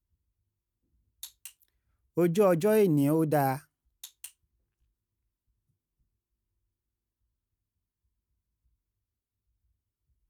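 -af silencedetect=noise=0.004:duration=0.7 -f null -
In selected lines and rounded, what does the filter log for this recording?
silence_start: 0.00
silence_end: 1.23 | silence_duration: 1.23
silence_start: 4.30
silence_end: 10.30 | silence_duration: 6.00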